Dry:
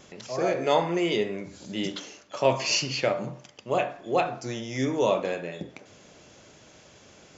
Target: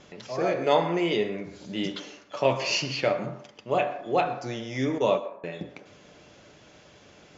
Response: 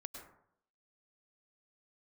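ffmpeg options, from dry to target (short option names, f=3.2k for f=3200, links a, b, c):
-filter_complex "[0:a]lowpass=4.9k,asettb=1/sr,asplit=3[a][b][c];[a]atrim=end=4.984[d];[b]atrim=start=4.98:end=5.44,asetpts=PTS-STARTPTS,afade=t=in:d=0.004:c=qsin,afade=t=out:st=0.456:d=0.004:c=qsin,agate=range=-32dB:threshold=-23dB:ratio=16:detection=peak[e];[c]atrim=start=5.436[f];[d][e]acrossfade=d=0.004:c1=hsin:c2=qsin[g];[g][f]acrossfade=d=0.004:c1=qsin:c2=hsin,asplit=2[h][i];[i]highpass=f=530:p=1[j];[1:a]atrim=start_sample=2205,adelay=7[k];[j][k]afir=irnorm=-1:irlink=0,volume=-4.5dB[l];[h][l]amix=inputs=2:normalize=0"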